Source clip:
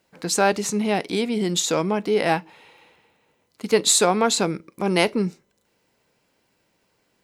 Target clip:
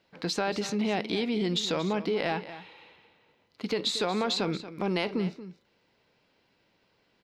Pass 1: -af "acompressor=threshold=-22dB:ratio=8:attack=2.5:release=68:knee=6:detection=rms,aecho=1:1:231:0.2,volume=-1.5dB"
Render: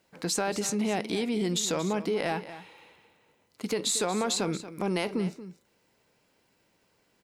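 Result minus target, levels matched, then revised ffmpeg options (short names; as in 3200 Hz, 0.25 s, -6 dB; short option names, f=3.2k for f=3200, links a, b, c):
8000 Hz band +10.5 dB
-af "acompressor=threshold=-22dB:ratio=8:attack=2.5:release=68:knee=6:detection=rms,highshelf=f=6k:t=q:w=1.5:g=-13,aecho=1:1:231:0.2,volume=-1.5dB"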